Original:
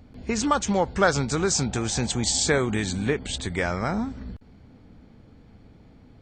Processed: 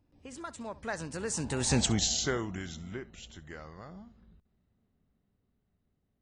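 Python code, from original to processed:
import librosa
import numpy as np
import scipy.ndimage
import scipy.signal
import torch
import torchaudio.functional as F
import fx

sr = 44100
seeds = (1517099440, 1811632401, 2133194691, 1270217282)

p1 = fx.doppler_pass(x, sr, speed_mps=47, closest_m=7.7, pass_at_s=1.8)
y = p1 + fx.room_flutter(p1, sr, wall_m=11.3, rt60_s=0.2, dry=0)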